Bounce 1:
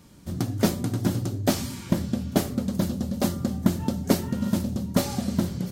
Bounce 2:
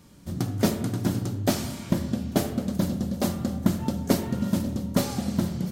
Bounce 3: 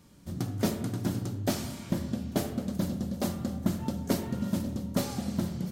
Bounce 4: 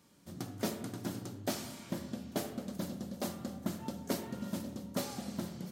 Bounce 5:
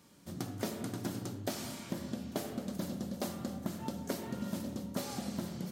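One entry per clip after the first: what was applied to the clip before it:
spring tank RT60 1.2 s, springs 32/39 ms, chirp 60 ms, DRR 8.5 dB; gain -1 dB
soft clip -9.5 dBFS, distortion -23 dB; gain -4.5 dB
HPF 290 Hz 6 dB/oct; gain -4 dB
compressor, threshold -36 dBFS, peak gain reduction 8 dB; gain +3.5 dB

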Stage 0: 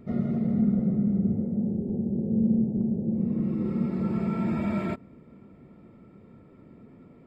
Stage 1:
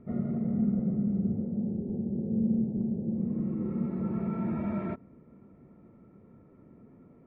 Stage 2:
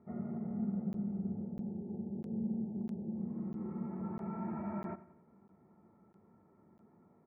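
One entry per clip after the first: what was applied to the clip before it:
LPF 1700 Hz 12 dB/oct; gain -4 dB
speaker cabinet 110–2000 Hz, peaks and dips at 130 Hz -10 dB, 270 Hz -9 dB, 510 Hz -7 dB, 850 Hz +9 dB; feedback echo 91 ms, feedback 46%, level -16 dB; crackling interface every 0.65 s, samples 512, zero, from 0.93; gain -5.5 dB

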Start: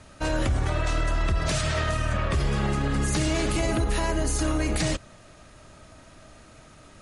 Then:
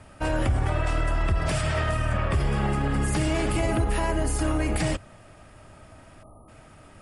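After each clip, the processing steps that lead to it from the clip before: spectral delete 6.23–6.48, 1300–9400 Hz; thirty-one-band EQ 100 Hz +5 dB, 800 Hz +4 dB, 4000 Hz -9 dB, 6300 Hz -10 dB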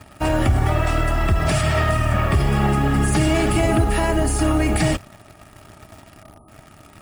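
in parallel at -3 dB: bit-crush 7-bit; on the sum: notch comb 510 Hz; gain +3 dB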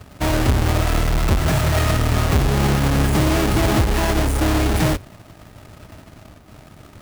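half-waves squared off; gain -4 dB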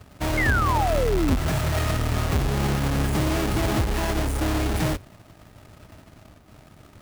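painted sound fall, 0.37–1.36, 240–2200 Hz -18 dBFS; gain -6 dB

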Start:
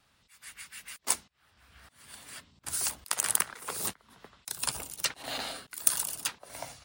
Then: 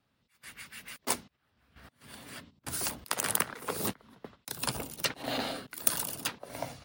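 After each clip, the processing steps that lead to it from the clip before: gate -55 dBFS, range -11 dB; ten-band EQ 125 Hz +6 dB, 250 Hz +8 dB, 500 Hz +5 dB, 8000 Hz -7 dB; gain +1 dB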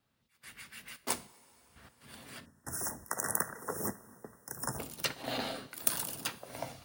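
two-slope reverb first 0.39 s, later 4.3 s, from -18 dB, DRR 12 dB; spectral delete 2.45–4.79, 2000–5200 Hz; companded quantiser 8-bit; gain -3 dB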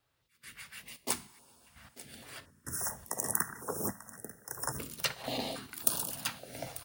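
echo 0.892 s -17 dB; stepped notch 3.6 Hz 210–2000 Hz; gain +1.5 dB

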